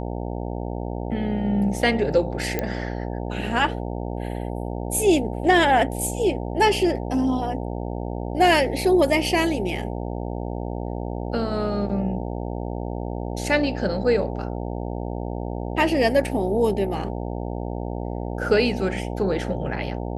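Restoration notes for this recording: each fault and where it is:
buzz 60 Hz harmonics 15 -29 dBFS
2.59 pop -10 dBFS

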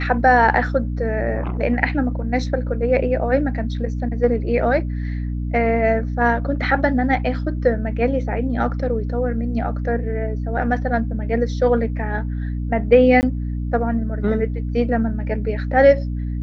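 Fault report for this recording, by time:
hum 60 Hz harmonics 5 -24 dBFS
13.21–13.23 gap 19 ms

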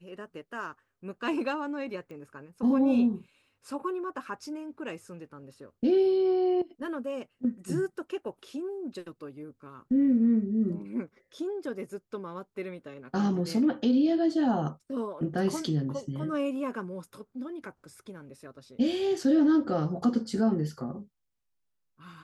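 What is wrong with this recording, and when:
2.11 pop -34 dBFS

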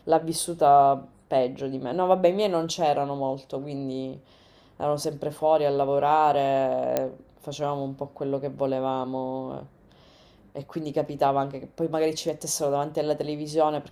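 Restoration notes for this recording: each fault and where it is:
6.97 pop -10 dBFS

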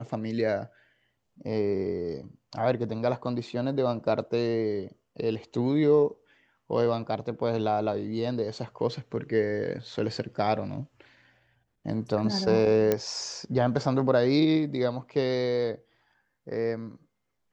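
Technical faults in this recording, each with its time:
12.92 pop -11 dBFS

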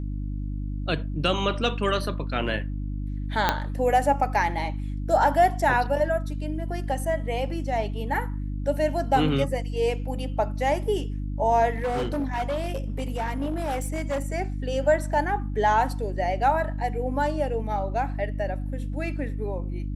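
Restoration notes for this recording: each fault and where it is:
hum 50 Hz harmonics 6 -30 dBFS
3.49 pop -6 dBFS
11.72–14.26 clipped -23 dBFS

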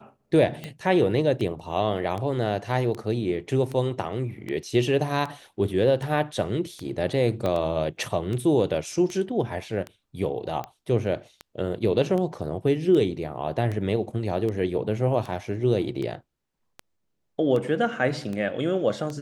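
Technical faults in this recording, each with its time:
tick 78 rpm -20 dBFS
7.46 pop -15 dBFS

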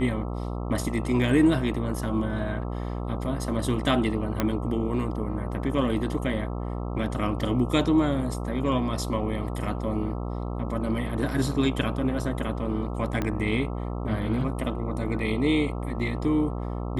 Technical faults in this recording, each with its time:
buzz 60 Hz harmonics 22 -31 dBFS
4.4 pop -10 dBFS
13.22 pop -14 dBFS

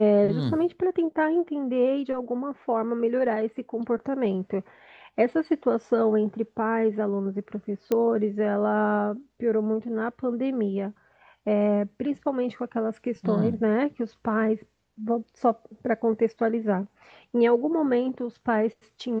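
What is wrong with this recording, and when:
7.92 pop -13 dBFS

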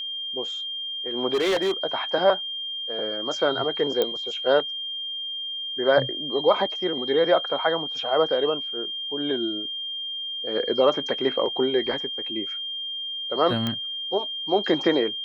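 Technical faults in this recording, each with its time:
tone 3200 Hz -29 dBFS
1.33–1.72 clipped -19 dBFS
4.02 pop -10 dBFS
13.67 pop -13 dBFS

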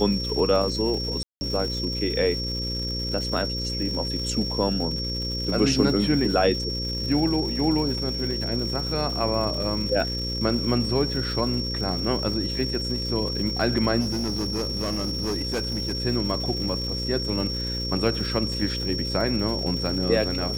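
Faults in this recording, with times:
buzz 60 Hz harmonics 9 -31 dBFS
crackle 320/s -33 dBFS
tone 5500 Hz -29 dBFS
1.23–1.41 gap 0.18 s
14–15.95 clipped -22.5 dBFS

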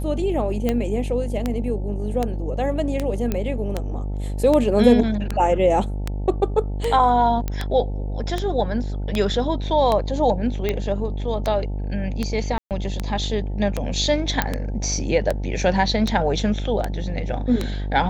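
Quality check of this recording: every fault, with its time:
buzz 50 Hz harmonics 18 -26 dBFS
tick 78 rpm -9 dBFS
3.32 pop -10 dBFS
7.48 pop -12 dBFS
12.58–12.71 gap 0.128 s
14.42 pop -4 dBFS

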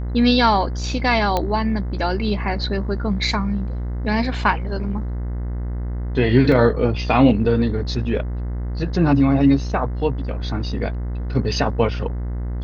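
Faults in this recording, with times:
buzz 60 Hz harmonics 35 -25 dBFS
1.37 pop -7 dBFS
6.52 gap 2.9 ms

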